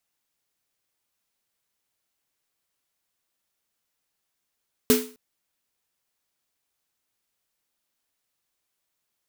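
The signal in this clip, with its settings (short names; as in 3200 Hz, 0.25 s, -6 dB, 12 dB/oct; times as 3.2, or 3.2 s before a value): snare drum length 0.26 s, tones 250 Hz, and 430 Hz, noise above 890 Hz, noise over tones -4.5 dB, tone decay 0.36 s, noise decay 0.37 s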